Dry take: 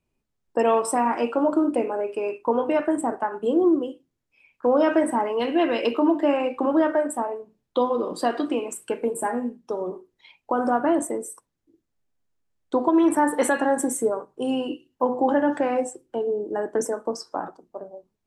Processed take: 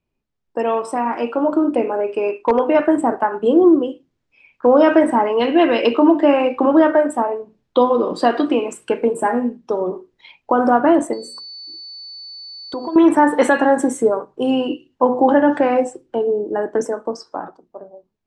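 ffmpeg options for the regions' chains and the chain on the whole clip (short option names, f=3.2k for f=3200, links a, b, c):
-filter_complex "[0:a]asettb=1/sr,asplit=3[a][b][c];[a]atrim=end=2.314[d];[b]atrim=start=2.31:end=2.75,asetpts=PTS-STARTPTS,afade=t=in:d=0.004:c=qsin,afade=t=out:st=0.436:d=0.004:c=qsin,acrossover=split=2800[e][f];[f]acompressor=threshold=-53dB:ratio=4:attack=1:release=60[g];[e][g]amix=inputs=2:normalize=0,equalizer=f=120:t=o:w=0.86:g=-14,volume=14dB,asoftclip=hard,volume=-14dB[h];[c]atrim=start=2.746[i];[d][h]acrossfade=d=0.004:c1=hsin:c2=qsin[j];[j][i]acrossfade=d=0.004:c1=qsin:c2=hsin,asettb=1/sr,asplit=3[k][l][m];[k]atrim=end=11.134[n];[l]atrim=start=11.13:end=12.96,asetpts=PTS-STARTPTS,afade=t=in:d=0.004:c=qsin,afade=t=out:st=1.826:d=0.004:c=qsin,aeval=exprs='val(0)+0.0126*sin(2*PI*4500*n/s)':c=same,bandreject=f=60:t=h:w=6,bandreject=f=120:t=h:w=6,bandreject=f=180:t=h:w=6,bandreject=f=240:t=h:w=6,bandreject=f=300:t=h:w=6,bandreject=f=360:t=h:w=6,bandreject=f=420:t=h:w=6,bandreject=f=480:t=h:w=6,bandreject=f=540:t=h:w=6,acompressor=threshold=-35dB:ratio=2.5:attack=3.2:release=140:knee=1:detection=peak[o];[m]atrim=start=12.956[p];[n][o]acrossfade=d=0.004:c1=hsin:c2=qsin[q];[q][p]acrossfade=d=0.004:c1=qsin:c2=hsin,lowpass=5.2k,dynaudnorm=f=200:g=17:m=10dB"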